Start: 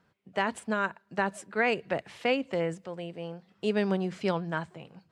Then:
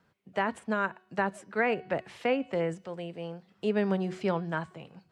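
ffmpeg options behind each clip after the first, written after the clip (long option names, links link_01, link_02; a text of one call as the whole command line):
ffmpeg -i in.wav -filter_complex "[0:a]bandreject=frequency=369.9:width_type=h:width=4,bandreject=frequency=739.8:width_type=h:width=4,bandreject=frequency=1109.7:width_type=h:width=4,bandreject=frequency=1479.6:width_type=h:width=4,bandreject=frequency=1849.5:width_type=h:width=4,bandreject=frequency=2219.4:width_type=h:width=4,bandreject=frequency=2589.3:width_type=h:width=4,bandreject=frequency=2959.2:width_type=h:width=4,bandreject=frequency=3329.1:width_type=h:width=4,bandreject=frequency=3699:width_type=h:width=4,bandreject=frequency=4068.9:width_type=h:width=4,bandreject=frequency=4438.8:width_type=h:width=4,bandreject=frequency=4808.7:width_type=h:width=4,bandreject=frequency=5178.6:width_type=h:width=4,bandreject=frequency=5548.5:width_type=h:width=4,bandreject=frequency=5918.4:width_type=h:width=4,bandreject=frequency=6288.3:width_type=h:width=4,acrossover=split=430|2500[link_01][link_02][link_03];[link_03]acompressor=threshold=-50dB:ratio=6[link_04];[link_01][link_02][link_04]amix=inputs=3:normalize=0" out.wav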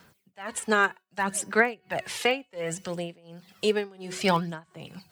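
ffmpeg -i in.wav -af "aphaser=in_gain=1:out_gain=1:delay=2.5:decay=0.48:speed=0.64:type=sinusoidal,crystalizer=i=5.5:c=0,tremolo=f=1.4:d=0.97,volume=5dB" out.wav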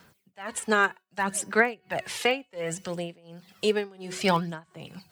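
ffmpeg -i in.wav -af anull out.wav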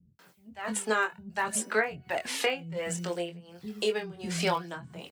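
ffmpeg -i in.wav -filter_complex "[0:a]acompressor=threshold=-27dB:ratio=2,asplit=2[link_01][link_02];[link_02]adelay=23,volume=-6dB[link_03];[link_01][link_03]amix=inputs=2:normalize=0,acrossover=split=230[link_04][link_05];[link_05]adelay=190[link_06];[link_04][link_06]amix=inputs=2:normalize=0" out.wav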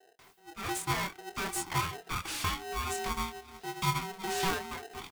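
ffmpeg -i in.wav -filter_complex "[0:a]acrossover=split=460[link_01][link_02];[link_02]asoftclip=type=tanh:threshold=-32dB[link_03];[link_01][link_03]amix=inputs=2:normalize=0,aeval=exprs='val(0)*sgn(sin(2*PI*570*n/s))':channel_layout=same" out.wav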